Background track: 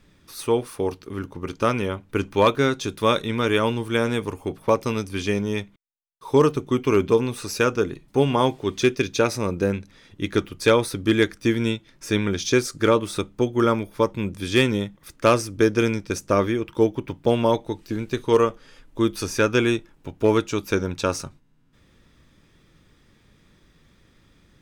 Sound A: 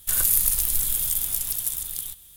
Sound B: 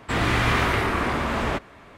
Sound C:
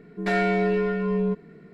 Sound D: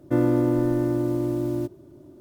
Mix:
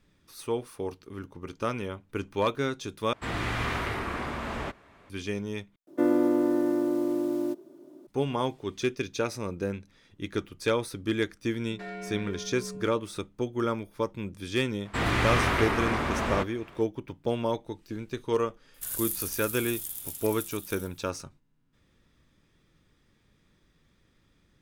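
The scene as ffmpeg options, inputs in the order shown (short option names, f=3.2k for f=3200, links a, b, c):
-filter_complex "[2:a]asplit=2[a][b];[0:a]volume=-9dB[c];[4:a]highpass=f=230:w=0.5412,highpass=f=230:w=1.3066[d];[1:a]highpass=71[e];[c]asplit=3[f][g][h];[f]atrim=end=3.134[i];[a]atrim=end=1.97,asetpts=PTS-STARTPTS,volume=-9dB[j];[g]atrim=start=5.096:end=5.874[k];[d]atrim=end=2.2,asetpts=PTS-STARTPTS,volume=-1.5dB[l];[h]atrim=start=8.066[m];[3:a]atrim=end=1.73,asetpts=PTS-STARTPTS,volume=-16.5dB,afade=t=in:d=0.004:c=hsin,afade=t=out:st=1.726:d=0.004:c=hsin,adelay=11530[n];[b]atrim=end=1.97,asetpts=PTS-STARTPTS,volume=-4dB,afade=t=in:d=0.004:c=hsin,afade=t=out:st=1.966:d=0.004:c=hsin,adelay=14850[o];[e]atrim=end=2.36,asetpts=PTS-STARTPTS,volume=-12.5dB,afade=t=in:d=0.004:c=hsin,afade=t=out:st=2.356:d=0.004:c=hsin,adelay=18740[p];[i][j]acrossfade=d=0.004:c1=hsin:c2=hsin[q];[q][k]acrossfade=d=0.004:c1=hsin:c2=hsin[r];[r][l]acrossfade=d=0.004:c1=hsin:c2=hsin[s];[s][m]acrossfade=d=0.004:c1=hsin:c2=hsin[t];[t][n][o][p]amix=inputs=4:normalize=0"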